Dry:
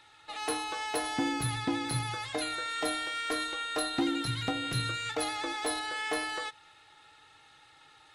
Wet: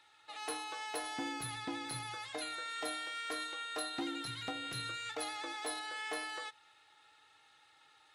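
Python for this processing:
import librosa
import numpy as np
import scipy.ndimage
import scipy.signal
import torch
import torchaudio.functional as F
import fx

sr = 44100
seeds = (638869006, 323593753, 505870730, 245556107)

y = fx.low_shelf(x, sr, hz=230.0, db=-11.0)
y = F.gain(torch.from_numpy(y), -6.5).numpy()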